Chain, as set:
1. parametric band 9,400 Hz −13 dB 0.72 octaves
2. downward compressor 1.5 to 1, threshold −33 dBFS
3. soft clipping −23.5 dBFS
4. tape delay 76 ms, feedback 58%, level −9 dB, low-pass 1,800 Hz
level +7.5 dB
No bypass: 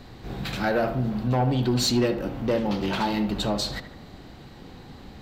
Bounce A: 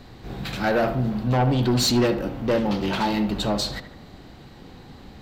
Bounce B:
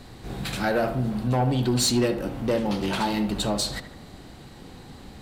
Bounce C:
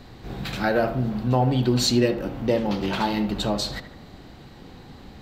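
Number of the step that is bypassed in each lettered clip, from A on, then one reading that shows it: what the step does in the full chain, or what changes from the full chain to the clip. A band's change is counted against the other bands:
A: 2, change in momentary loudness spread −12 LU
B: 1, 8 kHz band +5.0 dB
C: 3, distortion level −16 dB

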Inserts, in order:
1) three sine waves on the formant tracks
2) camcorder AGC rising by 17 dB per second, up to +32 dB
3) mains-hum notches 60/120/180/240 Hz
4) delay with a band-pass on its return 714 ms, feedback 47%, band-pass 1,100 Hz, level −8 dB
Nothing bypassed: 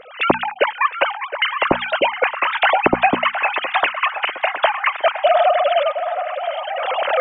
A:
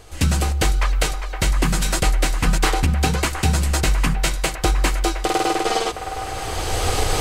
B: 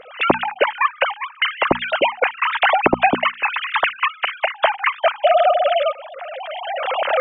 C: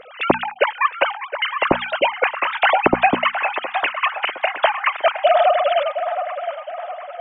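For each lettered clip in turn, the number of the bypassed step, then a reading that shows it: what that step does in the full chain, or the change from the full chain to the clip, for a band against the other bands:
1, 125 Hz band +25.0 dB
4, change in momentary loudness spread +1 LU
2, change in momentary loudness spread +2 LU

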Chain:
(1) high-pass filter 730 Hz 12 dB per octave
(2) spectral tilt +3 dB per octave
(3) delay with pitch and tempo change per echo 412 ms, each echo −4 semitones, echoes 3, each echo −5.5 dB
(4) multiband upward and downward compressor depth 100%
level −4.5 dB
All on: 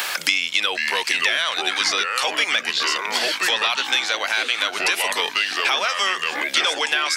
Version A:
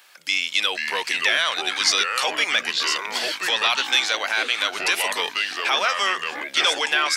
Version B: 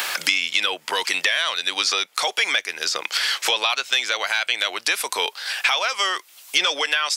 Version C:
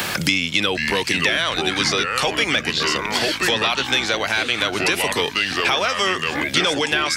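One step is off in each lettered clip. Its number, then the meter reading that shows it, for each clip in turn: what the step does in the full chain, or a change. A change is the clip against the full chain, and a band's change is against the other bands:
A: 4, change in crest factor −2.5 dB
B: 3, change in momentary loudness spread +2 LU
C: 1, change in crest factor −2.5 dB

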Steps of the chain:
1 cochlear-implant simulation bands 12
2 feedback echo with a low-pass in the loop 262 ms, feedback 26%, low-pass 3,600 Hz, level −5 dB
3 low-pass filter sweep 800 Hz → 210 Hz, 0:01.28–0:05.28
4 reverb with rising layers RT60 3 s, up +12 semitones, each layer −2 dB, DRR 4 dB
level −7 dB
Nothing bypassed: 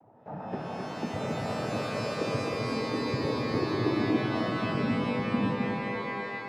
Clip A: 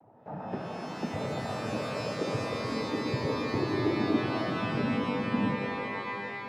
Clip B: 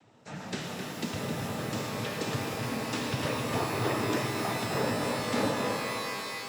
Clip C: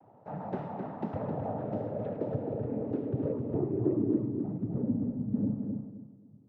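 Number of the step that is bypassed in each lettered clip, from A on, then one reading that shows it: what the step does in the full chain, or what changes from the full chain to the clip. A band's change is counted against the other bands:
2, change in integrated loudness −1.0 LU
3, 8 kHz band +12.0 dB
4, 1 kHz band −7.5 dB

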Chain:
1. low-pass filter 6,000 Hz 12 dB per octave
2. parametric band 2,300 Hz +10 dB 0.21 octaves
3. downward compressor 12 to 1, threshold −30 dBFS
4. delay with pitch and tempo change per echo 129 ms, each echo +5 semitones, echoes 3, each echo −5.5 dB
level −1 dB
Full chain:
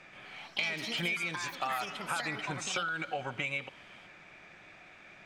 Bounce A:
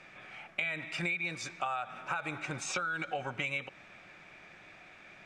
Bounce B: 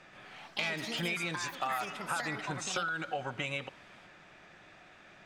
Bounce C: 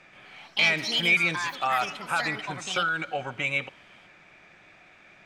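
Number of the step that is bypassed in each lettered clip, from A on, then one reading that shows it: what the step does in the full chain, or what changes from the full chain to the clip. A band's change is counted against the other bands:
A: 4, change in momentary loudness spread −1 LU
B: 2, 4 kHz band −2.5 dB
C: 3, average gain reduction 3.0 dB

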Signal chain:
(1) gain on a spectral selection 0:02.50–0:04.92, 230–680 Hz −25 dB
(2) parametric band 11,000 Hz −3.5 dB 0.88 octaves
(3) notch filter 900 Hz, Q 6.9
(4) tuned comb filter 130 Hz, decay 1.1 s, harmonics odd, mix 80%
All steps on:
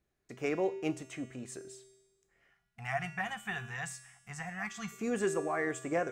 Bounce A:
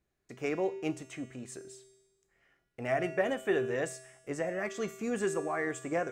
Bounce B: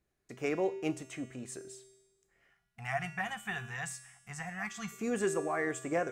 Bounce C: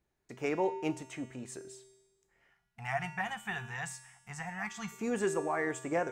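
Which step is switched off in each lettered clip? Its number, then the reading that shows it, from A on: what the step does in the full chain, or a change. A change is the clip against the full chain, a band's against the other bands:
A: 1, 500 Hz band +4.0 dB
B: 2, 8 kHz band +1.5 dB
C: 3, 1 kHz band +2.0 dB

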